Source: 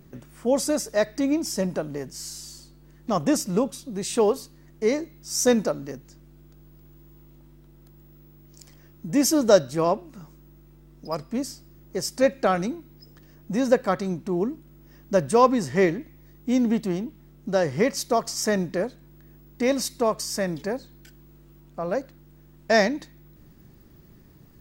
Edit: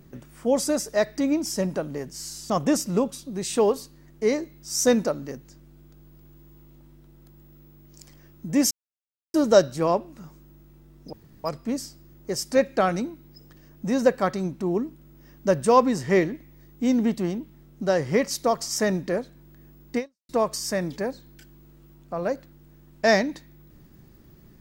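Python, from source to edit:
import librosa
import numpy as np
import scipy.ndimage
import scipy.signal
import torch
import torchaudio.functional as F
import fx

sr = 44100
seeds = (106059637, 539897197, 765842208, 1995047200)

y = fx.edit(x, sr, fx.cut(start_s=2.5, length_s=0.6),
    fx.insert_silence(at_s=9.31, length_s=0.63),
    fx.insert_room_tone(at_s=11.1, length_s=0.31),
    fx.fade_out_span(start_s=19.64, length_s=0.31, curve='exp'), tone=tone)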